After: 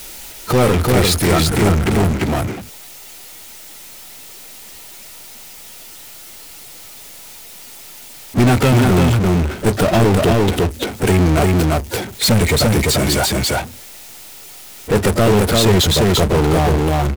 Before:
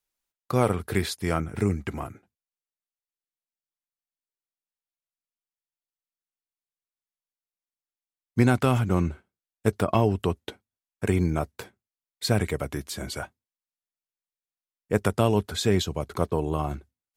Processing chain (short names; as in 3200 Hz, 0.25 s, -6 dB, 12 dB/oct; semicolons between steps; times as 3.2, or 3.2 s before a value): bin magnitudes rounded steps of 15 dB; Butterworth band-stop 1100 Hz, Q 4; bell 1600 Hz -7 dB 0.24 oct; echo 0.344 s -4.5 dB; power-law curve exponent 0.35